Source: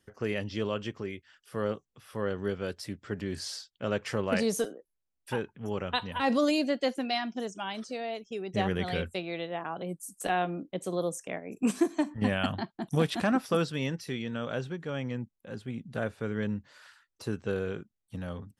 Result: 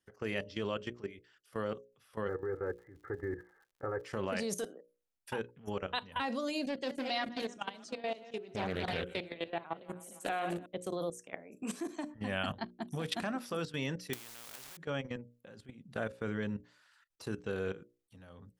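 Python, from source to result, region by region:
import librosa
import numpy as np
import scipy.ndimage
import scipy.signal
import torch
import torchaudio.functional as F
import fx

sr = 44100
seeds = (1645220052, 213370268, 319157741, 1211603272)

y = fx.steep_lowpass(x, sr, hz=2000.0, slope=96, at=(2.27, 4.03), fade=0.02)
y = fx.comb(y, sr, ms=2.4, depth=0.82, at=(2.27, 4.03), fade=0.02)
y = fx.dmg_crackle(y, sr, seeds[0], per_s=170.0, level_db=-53.0, at=(2.27, 4.03), fade=0.02)
y = fx.chain(y, sr, fx.reverse_delay_fb(ms=149, feedback_pct=49, wet_db=-11.0),
    fx.doppler_dist(depth_ms=0.36), at=(6.67, 10.66))
y = fx.chain(y, sr, fx.delta_hold(step_db=-43.0),
    fx.spectral_comp(ratio=4.0), at=(14.13, 14.77))
y = fx.level_steps(y, sr, step_db=17)
y = fx.low_shelf(y, sr, hz=320.0, db=-4.0)
y = fx.hum_notches(y, sr, base_hz=60, count=10)
y = F.gain(torch.from_numpy(y), 1.0).numpy()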